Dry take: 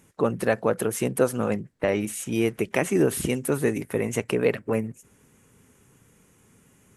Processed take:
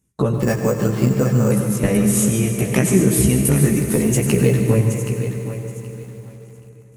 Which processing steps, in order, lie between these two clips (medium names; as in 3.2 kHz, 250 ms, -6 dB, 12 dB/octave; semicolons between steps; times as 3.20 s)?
3.61–4.63 s: block-companded coder 7-bit; gate -54 dBFS, range -25 dB; tone controls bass +14 dB, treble +10 dB; compression 6:1, threshold -19 dBFS, peak gain reduction 9 dB; chorus voices 2, 0.51 Hz, delay 15 ms, depth 1.2 ms; thinning echo 774 ms, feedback 20%, high-pass 170 Hz, level -10 dB; reverberation RT60 3.7 s, pre-delay 86 ms, DRR 5 dB; 0.40–1.51 s: careless resampling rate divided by 6×, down filtered, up hold; bit-crushed delay 144 ms, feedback 35%, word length 8-bit, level -13.5 dB; trim +8 dB